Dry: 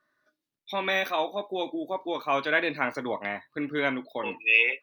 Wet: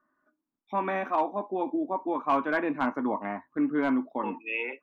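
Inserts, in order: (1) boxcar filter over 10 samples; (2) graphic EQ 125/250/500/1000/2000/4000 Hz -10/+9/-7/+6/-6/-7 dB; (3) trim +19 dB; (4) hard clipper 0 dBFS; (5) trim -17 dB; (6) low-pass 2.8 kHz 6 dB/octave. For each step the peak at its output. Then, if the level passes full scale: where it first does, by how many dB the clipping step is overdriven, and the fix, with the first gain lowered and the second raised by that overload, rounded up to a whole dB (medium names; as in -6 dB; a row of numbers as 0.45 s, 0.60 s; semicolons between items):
-11.5 dBFS, -12.5 dBFS, +6.5 dBFS, 0.0 dBFS, -17.0 dBFS, -17.0 dBFS; step 3, 6.5 dB; step 3 +12 dB, step 5 -10 dB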